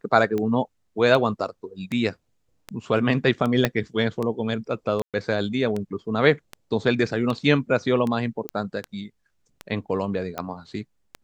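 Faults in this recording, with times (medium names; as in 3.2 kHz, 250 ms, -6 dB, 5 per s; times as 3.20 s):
tick 78 rpm -16 dBFS
3.65 s: pop -5 dBFS
5.02–5.14 s: dropout 117 ms
8.49 s: pop -14 dBFS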